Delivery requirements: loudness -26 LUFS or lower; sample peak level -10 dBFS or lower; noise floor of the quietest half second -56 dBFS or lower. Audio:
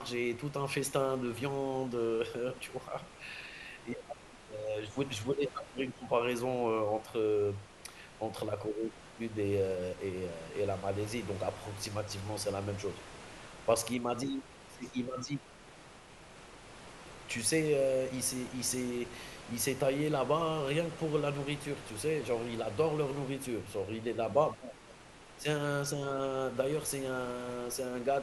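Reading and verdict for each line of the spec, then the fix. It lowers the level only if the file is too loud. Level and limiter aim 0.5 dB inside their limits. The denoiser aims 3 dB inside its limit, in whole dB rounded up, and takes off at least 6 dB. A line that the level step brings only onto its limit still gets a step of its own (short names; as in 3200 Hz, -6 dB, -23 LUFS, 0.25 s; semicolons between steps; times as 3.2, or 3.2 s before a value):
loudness -35.0 LUFS: OK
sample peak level -14.0 dBFS: OK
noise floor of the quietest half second -54 dBFS: fail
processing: denoiser 6 dB, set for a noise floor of -54 dBFS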